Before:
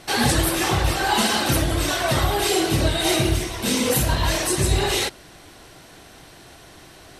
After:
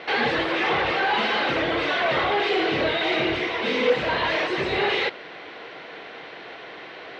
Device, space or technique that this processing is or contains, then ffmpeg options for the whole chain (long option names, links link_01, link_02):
overdrive pedal into a guitar cabinet: -filter_complex "[0:a]asplit=2[link_01][link_02];[link_02]highpass=frequency=720:poles=1,volume=23dB,asoftclip=type=tanh:threshold=-7.5dB[link_03];[link_01][link_03]amix=inputs=2:normalize=0,lowpass=frequency=4200:poles=1,volume=-6dB,highpass=100,equalizer=frequency=110:width_type=q:width=4:gain=-7,equalizer=frequency=470:width_type=q:width=4:gain=9,equalizer=frequency=2100:width_type=q:width=4:gain=5,lowpass=frequency=3600:width=0.5412,lowpass=frequency=3600:width=1.3066,volume=-8dB"